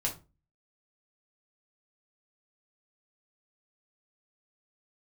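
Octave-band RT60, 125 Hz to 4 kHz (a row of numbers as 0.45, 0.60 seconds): 0.50, 0.45, 0.30, 0.30, 0.25, 0.20 seconds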